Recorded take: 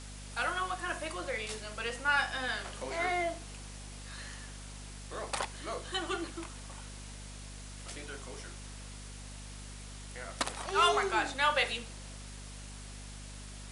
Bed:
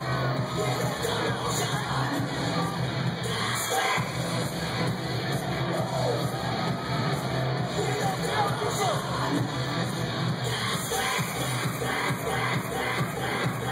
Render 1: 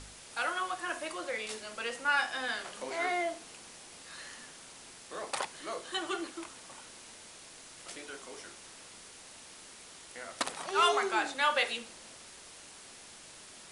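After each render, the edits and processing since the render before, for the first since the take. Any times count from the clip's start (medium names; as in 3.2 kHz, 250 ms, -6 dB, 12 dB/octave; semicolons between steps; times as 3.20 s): de-hum 50 Hz, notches 5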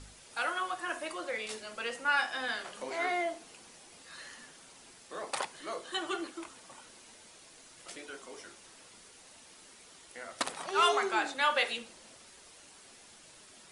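noise reduction 6 dB, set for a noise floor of -52 dBFS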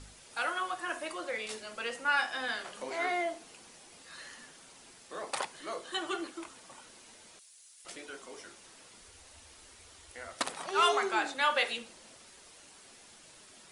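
7.39–7.85 s: differentiator; 9.02–10.34 s: resonant low shelf 110 Hz +9.5 dB, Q 3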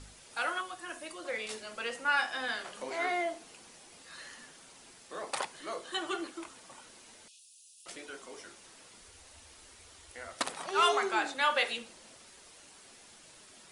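0.61–1.25 s: peaking EQ 1 kHz -8 dB 2.9 oct; 7.28–7.86 s: Chebyshev high-pass 2.5 kHz, order 10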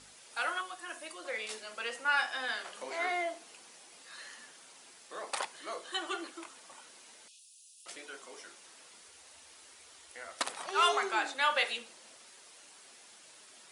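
high-pass 480 Hz 6 dB/octave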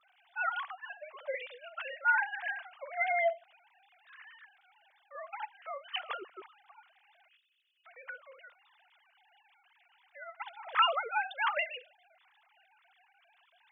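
formants replaced by sine waves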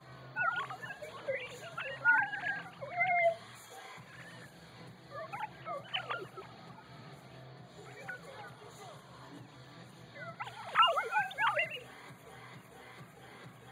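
add bed -24.5 dB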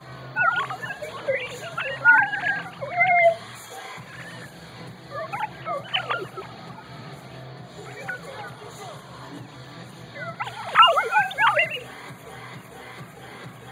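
trim +12 dB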